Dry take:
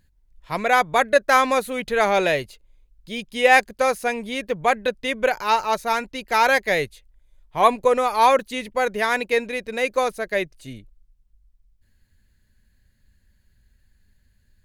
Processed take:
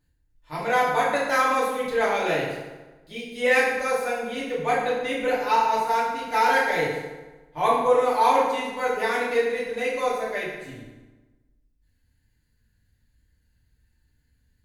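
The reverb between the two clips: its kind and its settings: FDN reverb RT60 1.2 s, low-frequency decay 1.1×, high-frequency decay 0.7×, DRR -8.5 dB; trim -12.5 dB

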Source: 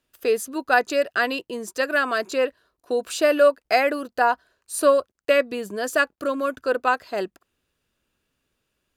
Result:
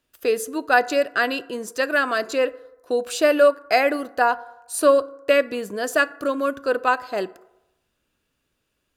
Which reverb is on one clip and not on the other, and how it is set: FDN reverb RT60 0.95 s, low-frequency decay 0.7×, high-frequency decay 0.4×, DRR 15.5 dB; trim +1 dB

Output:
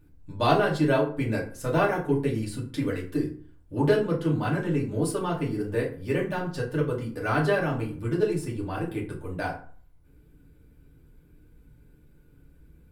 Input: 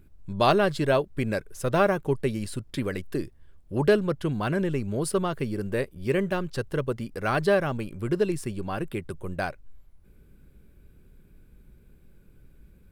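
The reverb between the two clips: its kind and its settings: FDN reverb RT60 0.45 s, low-frequency decay 1.2×, high-frequency decay 0.6×, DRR -4.5 dB; trim -6.5 dB

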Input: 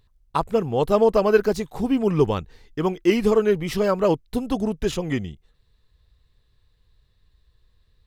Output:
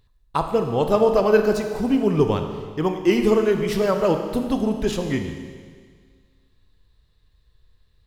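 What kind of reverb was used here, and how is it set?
Schroeder reverb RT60 1.8 s, combs from 26 ms, DRR 5.5 dB

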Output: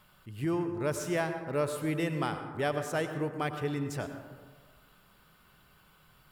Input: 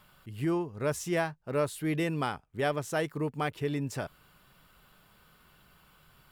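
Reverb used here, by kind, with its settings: plate-style reverb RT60 1.5 s, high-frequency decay 0.35×, pre-delay 80 ms, DRR 7.5 dB; trim -1.5 dB

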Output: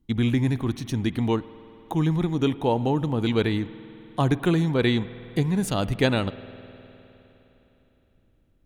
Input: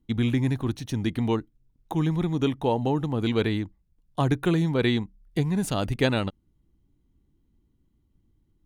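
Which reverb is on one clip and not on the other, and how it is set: spring tank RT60 3.6 s, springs 51 ms, chirp 40 ms, DRR 15.5 dB; trim +1.5 dB

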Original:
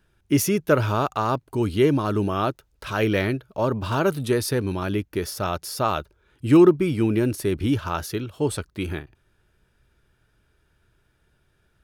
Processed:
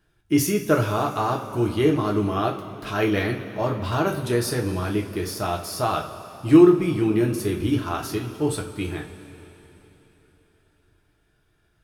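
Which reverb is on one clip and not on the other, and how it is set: two-slope reverb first 0.3 s, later 3.8 s, from -18 dB, DRR 0 dB; trim -3 dB

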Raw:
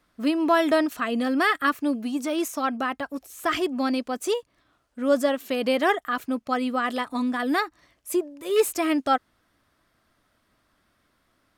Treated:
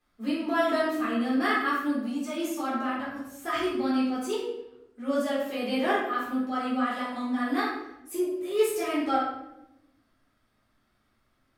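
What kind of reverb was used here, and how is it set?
simulated room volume 280 m³, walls mixed, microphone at 3.8 m; trim -15 dB

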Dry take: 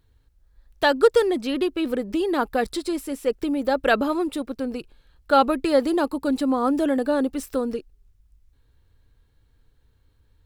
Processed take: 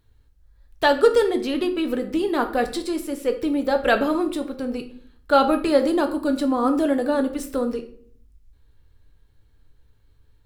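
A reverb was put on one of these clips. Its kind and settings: simulated room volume 70 m³, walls mixed, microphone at 0.37 m

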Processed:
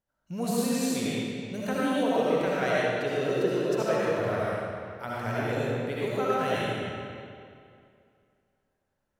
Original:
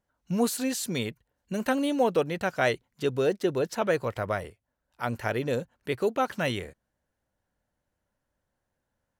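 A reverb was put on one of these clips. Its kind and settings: algorithmic reverb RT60 2.4 s, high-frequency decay 0.8×, pre-delay 35 ms, DRR -8 dB; trim -8 dB

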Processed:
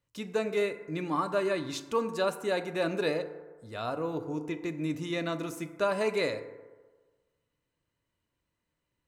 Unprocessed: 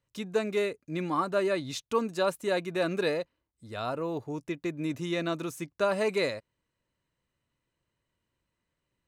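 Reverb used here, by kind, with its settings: FDN reverb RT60 1.4 s, low-frequency decay 0.8×, high-frequency decay 0.35×, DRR 8.5 dB; trim -1.5 dB

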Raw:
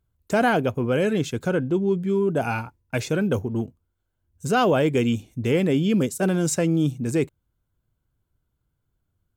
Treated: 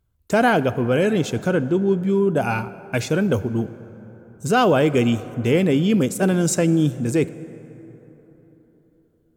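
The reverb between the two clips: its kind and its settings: plate-style reverb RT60 4 s, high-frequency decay 0.45×, DRR 15 dB; trim +3 dB

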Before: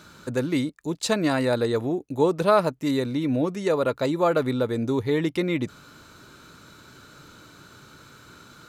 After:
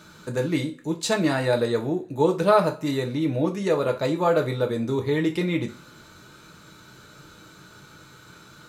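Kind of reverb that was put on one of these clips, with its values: two-slope reverb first 0.28 s, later 1.5 s, from -27 dB, DRR 2.5 dB; trim -1.5 dB

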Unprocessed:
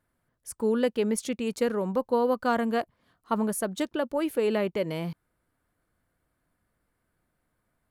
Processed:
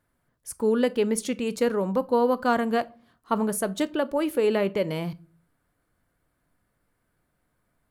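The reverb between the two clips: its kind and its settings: simulated room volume 250 m³, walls furnished, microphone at 0.3 m; trim +2.5 dB

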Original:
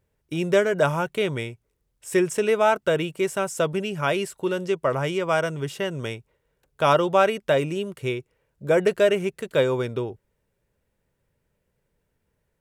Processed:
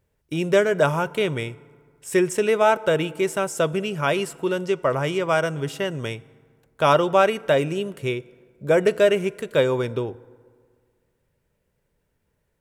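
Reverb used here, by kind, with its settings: FDN reverb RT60 1.9 s, low-frequency decay 1×, high-frequency decay 0.5×, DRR 19 dB; trim +1.5 dB

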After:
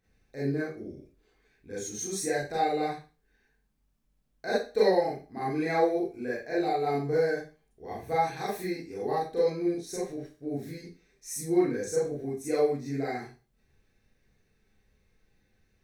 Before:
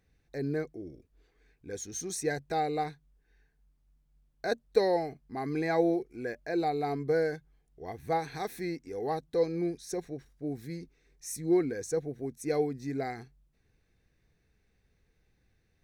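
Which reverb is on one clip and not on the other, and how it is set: Schroeder reverb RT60 0.33 s, combs from 29 ms, DRR -7.5 dB; trim -5 dB

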